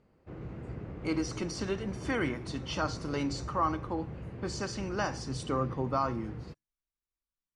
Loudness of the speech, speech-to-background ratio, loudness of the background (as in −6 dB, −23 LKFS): −34.5 LKFS, 8.5 dB, −43.0 LKFS